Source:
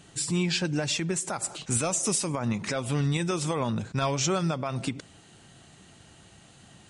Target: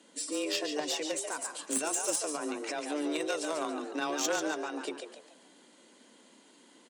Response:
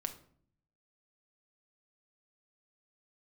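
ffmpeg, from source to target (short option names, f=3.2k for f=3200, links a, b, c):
-filter_complex "[0:a]aecho=1:1:2.3:0.36,asplit=5[a][b][c][d][e];[b]adelay=142,afreqshift=82,volume=-6dB[f];[c]adelay=284,afreqshift=164,volume=-14.9dB[g];[d]adelay=426,afreqshift=246,volume=-23.7dB[h];[e]adelay=568,afreqshift=328,volume=-32.6dB[i];[a][f][g][h][i]amix=inputs=5:normalize=0,asplit=2[j][k];[k]acrusher=bits=2:mix=0:aa=0.5,volume=-3dB[l];[j][l]amix=inputs=2:normalize=0,afreqshift=150,volume=-7dB"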